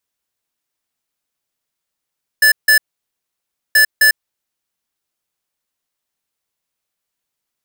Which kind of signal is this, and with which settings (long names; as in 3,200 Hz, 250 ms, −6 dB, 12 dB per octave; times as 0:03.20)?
beeps in groups square 1,740 Hz, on 0.10 s, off 0.16 s, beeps 2, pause 0.97 s, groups 2, −9.5 dBFS